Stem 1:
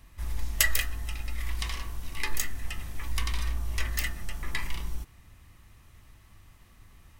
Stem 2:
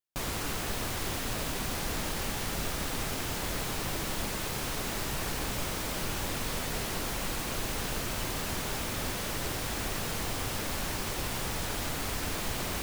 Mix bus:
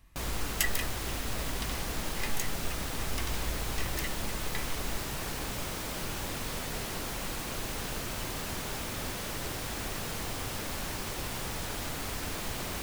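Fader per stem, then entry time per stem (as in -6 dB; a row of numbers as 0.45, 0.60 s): -6.0, -2.5 dB; 0.00, 0.00 s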